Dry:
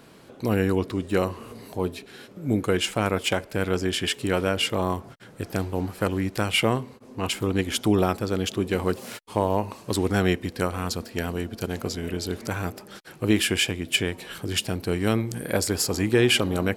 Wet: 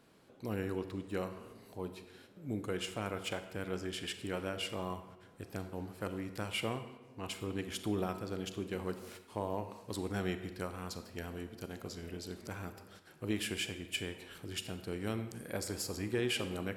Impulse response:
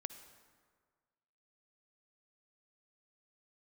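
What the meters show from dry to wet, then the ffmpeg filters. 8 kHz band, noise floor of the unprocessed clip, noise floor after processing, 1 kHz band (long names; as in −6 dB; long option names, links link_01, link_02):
−14.0 dB, −49 dBFS, −59 dBFS, −14.0 dB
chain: -filter_complex "[1:a]atrim=start_sample=2205,asetrate=70560,aresample=44100[link_01];[0:a][link_01]afir=irnorm=-1:irlink=0,volume=-7dB"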